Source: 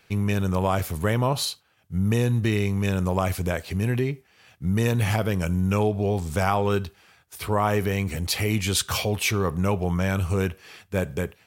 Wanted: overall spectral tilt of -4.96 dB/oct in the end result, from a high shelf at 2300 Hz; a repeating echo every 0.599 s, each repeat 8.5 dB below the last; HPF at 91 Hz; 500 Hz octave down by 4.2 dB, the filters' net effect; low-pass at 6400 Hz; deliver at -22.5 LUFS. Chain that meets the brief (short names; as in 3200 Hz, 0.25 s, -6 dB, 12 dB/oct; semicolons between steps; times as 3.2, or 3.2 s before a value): HPF 91 Hz; LPF 6400 Hz; bell 500 Hz -5.5 dB; high shelf 2300 Hz +4 dB; feedback echo 0.599 s, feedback 38%, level -8.5 dB; gain +3.5 dB